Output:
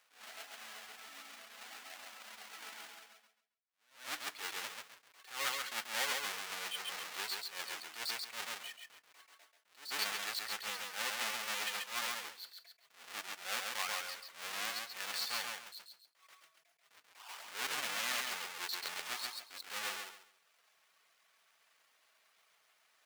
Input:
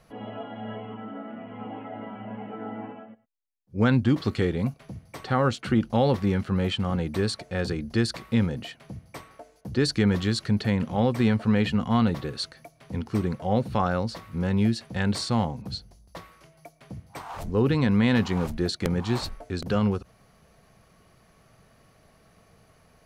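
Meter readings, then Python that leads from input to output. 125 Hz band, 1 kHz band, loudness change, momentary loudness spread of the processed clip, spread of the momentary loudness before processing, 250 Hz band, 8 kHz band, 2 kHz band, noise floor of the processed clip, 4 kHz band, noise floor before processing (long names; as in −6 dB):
below −40 dB, −11.5 dB, −13.5 dB, 15 LU, 17 LU, −37.0 dB, +1.5 dB, −4.5 dB, −73 dBFS, −4.0 dB, −60 dBFS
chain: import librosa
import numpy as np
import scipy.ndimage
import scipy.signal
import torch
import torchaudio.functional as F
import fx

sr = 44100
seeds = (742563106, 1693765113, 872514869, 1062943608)

y = fx.halfwave_hold(x, sr)
y = fx.dereverb_blind(y, sr, rt60_s=0.68)
y = scipy.signal.sosfilt(scipy.signal.bessel(2, 2300.0, 'highpass', norm='mag', fs=sr, output='sos'), y)
y = fx.high_shelf(y, sr, hz=3600.0, db=-6.5)
y = fx.echo_feedback(y, sr, ms=136, feedback_pct=26, wet_db=-3.5)
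y = fx.rev_fdn(y, sr, rt60_s=0.53, lf_ratio=1.0, hf_ratio=0.7, size_ms=20.0, drr_db=16.0)
y = fx.attack_slew(y, sr, db_per_s=140.0)
y = F.gain(torch.from_numpy(y), -4.0).numpy()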